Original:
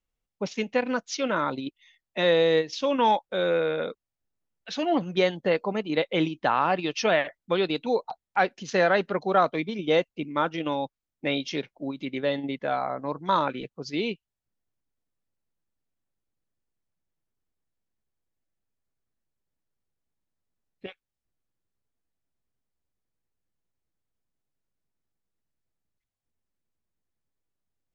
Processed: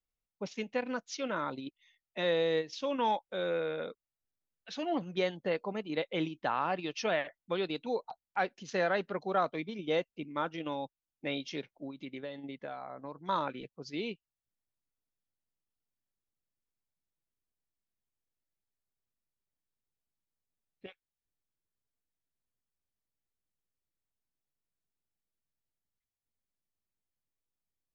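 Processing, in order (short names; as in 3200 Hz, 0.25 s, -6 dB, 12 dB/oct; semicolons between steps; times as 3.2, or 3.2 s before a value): 11.85–13.29 compressor 6:1, threshold -30 dBFS, peak gain reduction 9 dB; gain -8.5 dB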